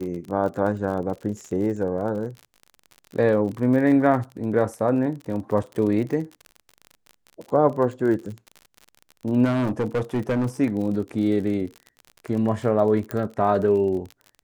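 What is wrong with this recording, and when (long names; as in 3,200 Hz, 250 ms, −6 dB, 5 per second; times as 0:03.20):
surface crackle 45 per second −31 dBFS
0:09.44–0:10.47: clipping −19 dBFS
0:13.11: click −14 dBFS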